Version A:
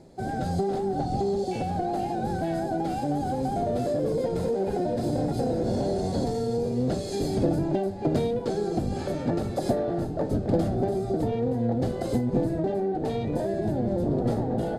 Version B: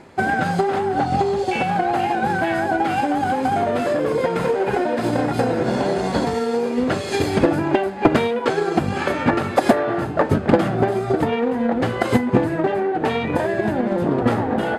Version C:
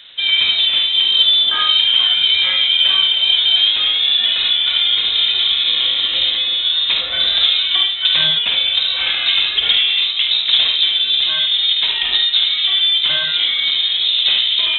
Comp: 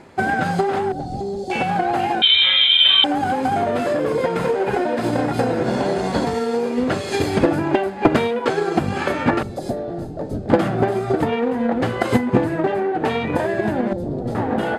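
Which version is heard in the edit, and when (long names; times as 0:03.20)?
B
0:00.92–0:01.50: punch in from A
0:02.22–0:03.04: punch in from C
0:09.43–0:10.50: punch in from A
0:13.93–0:14.35: punch in from A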